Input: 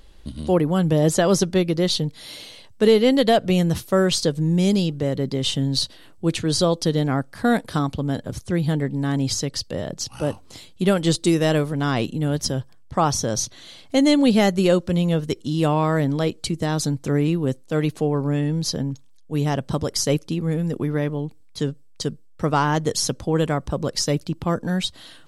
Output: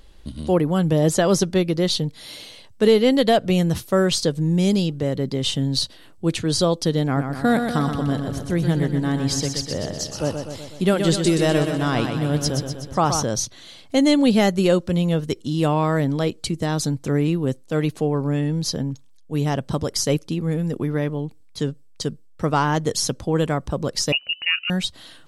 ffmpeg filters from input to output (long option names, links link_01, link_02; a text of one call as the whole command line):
ffmpeg -i in.wav -filter_complex "[0:a]asettb=1/sr,asplit=3[link_01][link_02][link_03];[link_01]atrim=end=7.044[link_04];[link_02]atrim=start=7.04:end=13.23,asetpts=PTS-STARTPTS,afade=type=in:duration=0.004:curve=qsin,afade=type=out:start_time=6.186:duration=0.004:curve=qsin,aecho=1:1:124|248|372|496|620|744|868|992:0.473|0.284|0.17|0.102|0.0613|0.0368|0.0221|0.0132,atrim=end_sample=272979[link_05];[link_03]atrim=start=13.226[link_06];[link_04][link_05]acrossfade=duration=0.004:curve1=hsin:curve2=qsin[link_07];[link_07][link_06]acrossfade=duration=0.004:curve1=qsin:curve2=hsin,asettb=1/sr,asplit=3[link_08][link_09][link_10];[link_08]atrim=end=24.124[link_11];[link_09]atrim=start=24.12:end=24.7,asetpts=PTS-STARTPTS,afade=type=in:duration=0.004:curve=qsin,afade=type=out:start_time=0.576:duration=0.004:curve=qsin,lowpass=frequency=2600:width_type=q:width=0.5098,lowpass=frequency=2600:width_type=q:width=0.6013,lowpass=frequency=2600:width_type=q:width=0.9,lowpass=frequency=2600:width_type=q:width=2.563,afreqshift=-3000[link_12];[link_10]atrim=start=24.696[link_13];[link_11][link_12]acrossfade=duration=0.004:curve1=hsin:curve2=qsin[link_14];[link_14][link_13]acrossfade=duration=0.004:curve1=qsin:curve2=hsin" out.wav